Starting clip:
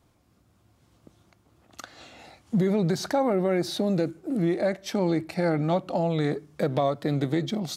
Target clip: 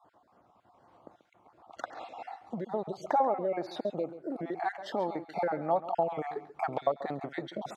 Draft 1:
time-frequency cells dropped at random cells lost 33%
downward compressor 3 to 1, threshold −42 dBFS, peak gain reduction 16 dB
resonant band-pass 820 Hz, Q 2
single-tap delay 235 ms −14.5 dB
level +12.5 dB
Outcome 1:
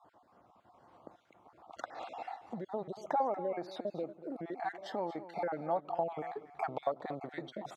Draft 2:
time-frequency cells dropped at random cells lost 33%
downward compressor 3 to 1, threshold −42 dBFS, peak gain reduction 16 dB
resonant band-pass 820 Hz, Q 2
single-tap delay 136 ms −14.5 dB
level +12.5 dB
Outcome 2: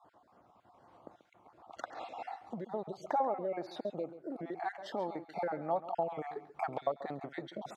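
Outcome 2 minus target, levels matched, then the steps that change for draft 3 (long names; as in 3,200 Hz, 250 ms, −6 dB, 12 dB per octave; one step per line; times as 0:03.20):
downward compressor: peak gain reduction +5 dB
change: downward compressor 3 to 1, threshold −34.5 dBFS, peak gain reduction 11 dB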